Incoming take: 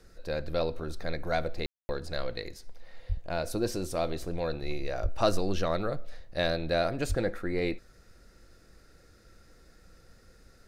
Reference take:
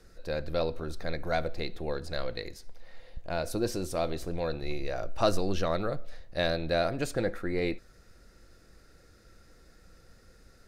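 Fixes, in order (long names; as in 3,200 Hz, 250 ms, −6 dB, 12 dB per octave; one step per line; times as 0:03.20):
0:03.08–0:03.20: high-pass filter 140 Hz 24 dB per octave
0:05.02–0:05.14: high-pass filter 140 Hz 24 dB per octave
0:07.08–0:07.20: high-pass filter 140 Hz 24 dB per octave
ambience match 0:01.66–0:01.89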